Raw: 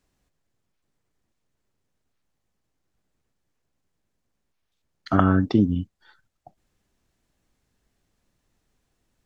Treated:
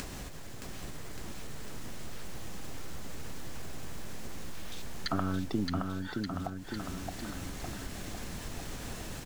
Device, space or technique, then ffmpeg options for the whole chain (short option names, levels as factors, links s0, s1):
upward and downward compression: -af "acompressor=mode=upward:threshold=0.0398:ratio=2.5,acompressor=threshold=0.00562:ratio=3,aecho=1:1:620|1178|1680|2132|2539:0.631|0.398|0.251|0.158|0.1,volume=2.51"